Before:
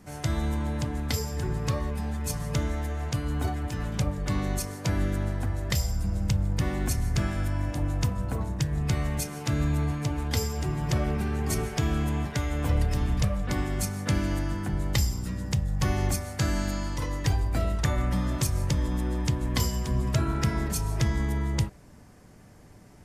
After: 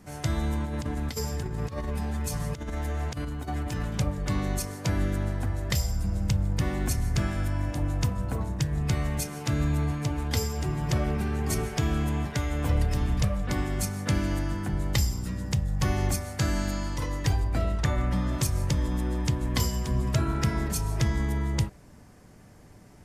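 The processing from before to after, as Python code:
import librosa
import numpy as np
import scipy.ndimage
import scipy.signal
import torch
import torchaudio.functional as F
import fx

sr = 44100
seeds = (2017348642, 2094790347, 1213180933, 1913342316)

y = fx.over_compress(x, sr, threshold_db=-30.0, ratio=-0.5, at=(0.64, 3.85))
y = fx.high_shelf(y, sr, hz=7800.0, db=-8.5, at=(17.44, 18.33))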